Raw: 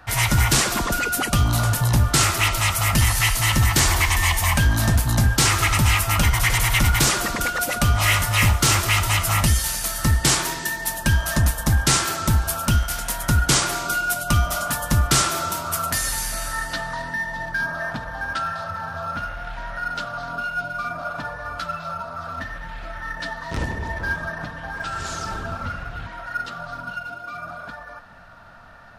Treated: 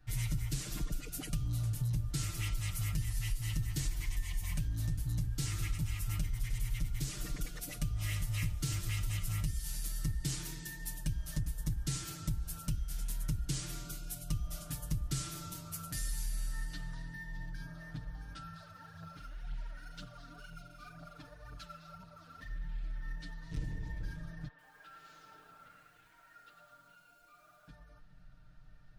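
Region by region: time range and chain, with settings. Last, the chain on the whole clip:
0:18.53–0:22.49: phase shifter 2 Hz, delay 4.1 ms, feedback 61% + low-shelf EQ 130 Hz −11 dB
0:24.48–0:27.68: band-pass filter 610–2,400 Hz + feedback echo at a low word length 106 ms, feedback 35%, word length 8 bits, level −6 dB
whole clip: guitar amp tone stack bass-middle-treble 10-0-1; comb filter 6.6 ms, depth 89%; downward compressor 5 to 1, threshold −32 dBFS; level +1 dB

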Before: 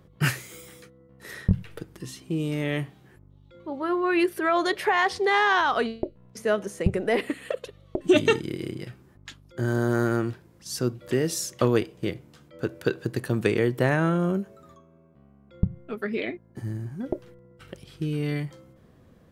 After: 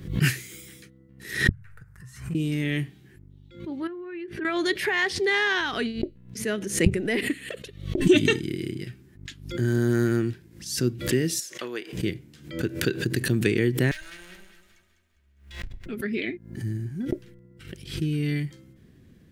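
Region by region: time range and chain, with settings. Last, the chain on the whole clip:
0:01.49–0:02.35: drawn EQ curve 120 Hz 0 dB, 320 Hz −29 dB, 510 Hz −10 dB, 1,400 Hz +7 dB, 3,200 Hz −22 dB, 7,500 Hz −10 dB + downward compressor 2 to 1, threshold −45 dBFS
0:03.87–0:04.45: low-pass filter 2,100 Hz + downward compressor, threshold −36 dBFS
0:11.40–0:11.93: high-pass filter 680 Hz + high-shelf EQ 2,600 Hz −9 dB
0:13.91–0:15.86: lower of the sound and its delayed copy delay 3.2 ms + guitar amp tone stack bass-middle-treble 10-0-10 + delay that swaps between a low-pass and a high-pass 101 ms, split 1,100 Hz, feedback 64%, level −4.5 dB
whole clip: flat-topped bell 800 Hz −12.5 dB; background raised ahead of every attack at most 110 dB per second; level +2 dB

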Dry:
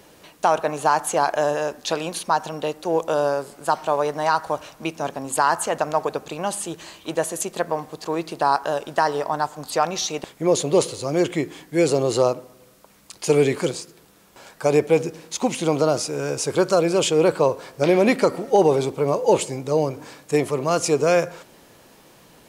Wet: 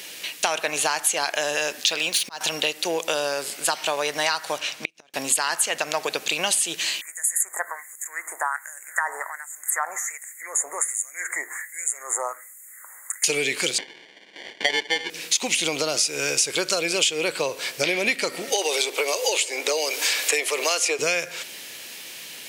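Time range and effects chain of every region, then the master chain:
0:01.87–0:02.41: running median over 3 samples + volume swells 462 ms
0:04.58–0:05.14: parametric band 13,000 Hz −10.5 dB 0.94 octaves + gate with flip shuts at −19 dBFS, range −37 dB
0:07.01–0:13.24: downward compressor 1.5 to 1, threshold −35 dBFS + auto-filter high-pass sine 1.3 Hz 850–3,400 Hz + Chebyshev band-stop filter 2,000–6,900 Hz, order 5
0:13.78–0:15.10: sample-rate reduction 1,300 Hz + band-pass filter 250–3,600 Hz
0:18.52–0:20.99: high-pass filter 390 Hz 24 dB per octave + multiband upward and downward compressor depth 100%
whole clip: high shelf with overshoot 1,600 Hz +12 dB, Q 1.5; downward compressor 6 to 1, threshold −23 dBFS; high-pass filter 430 Hz 6 dB per octave; level +4 dB

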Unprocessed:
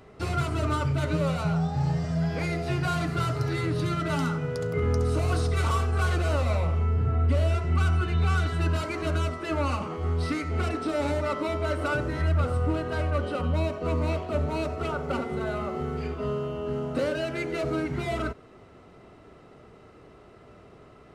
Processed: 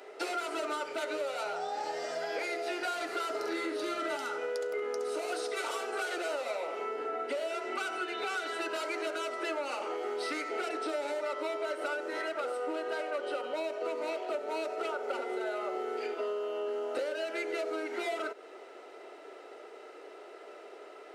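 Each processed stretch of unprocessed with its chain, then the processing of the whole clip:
0:03.30–0:04.17: low-shelf EQ 320 Hz +11 dB + double-tracking delay 45 ms −5 dB
whole clip: Butterworth high-pass 360 Hz 36 dB per octave; notch filter 1,100 Hz, Q 5.5; downward compressor, threshold −37 dBFS; level +5 dB

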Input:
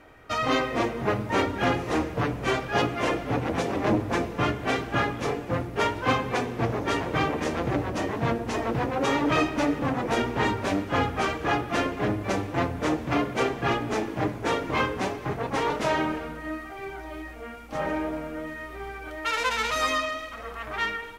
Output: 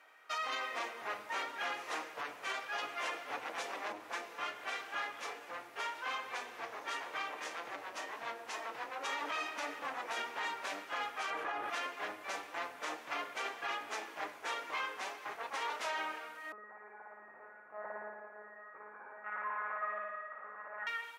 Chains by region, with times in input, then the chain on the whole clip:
0:03.92–0:09.06: double-tracking delay 32 ms −12 dB + downward compressor 1.5 to 1, threshold −30 dBFS
0:11.30–0:11.70: low-pass filter 12,000 Hz 24 dB per octave + parametric band 5,900 Hz −13.5 dB 2.7 octaves + envelope flattener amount 100%
0:16.52–0:20.87: Bessel low-pass filter 1,000 Hz, order 8 + one-pitch LPC vocoder at 8 kHz 210 Hz + flutter between parallel walls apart 9.7 metres, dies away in 1.4 s
whole clip: high-pass filter 970 Hz 12 dB per octave; brickwall limiter −23 dBFS; level −5.5 dB

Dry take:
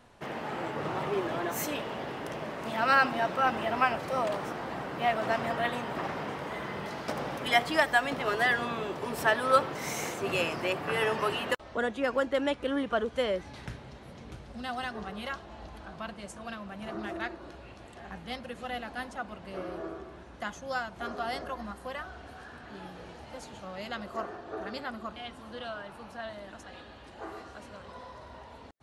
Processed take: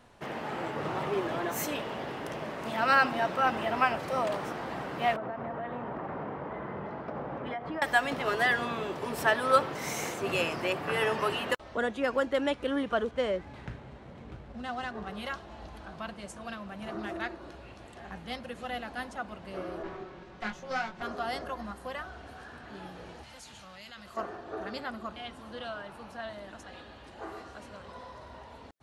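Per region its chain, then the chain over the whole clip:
0:05.16–0:07.82: low-pass filter 1,300 Hz + downward compressor 10 to 1, threshold −32 dBFS
0:13.11–0:15.07: running median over 9 samples + high-frequency loss of the air 71 metres
0:19.83–0:21.03: lower of the sound and its delayed copy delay 5.4 ms + low-pass filter 5,300 Hz + double-tracking delay 23 ms −4 dB
0:23.23–0:24.17: guitar amp tone stack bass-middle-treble 5-5-5 + envelope flattener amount 70%
whole clip: no processing

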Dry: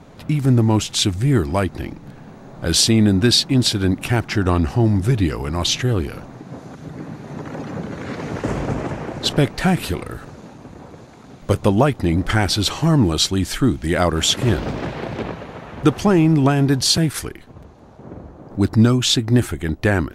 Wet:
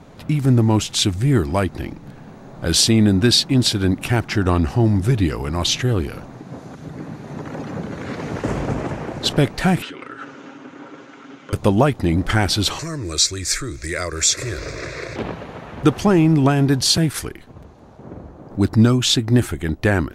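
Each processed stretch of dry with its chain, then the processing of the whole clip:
0:09.82–0:11.53: comb filter 7.4 ms, depth 47% + downward compressor 10 to 1, threshold −30 dBFS + loudspeaker in its box 280–6,700 Hz, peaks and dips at 290 Hz +8 dB, 700 Hz −5 dB, 1,400 Hz +10 dB, 2,100 Hz +5 dB, 3,000 Hz +8 dB, 4,300 Hz −5 dB
0:12.79–0:15.16: downward compressor 2 to 1, threshold −23 dBFS + flat-topped bell 4,100 Hz +14 dB 2.3 octaves + phaser with its sweep stopped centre 820 Hz, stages 6
whole clip: no processing

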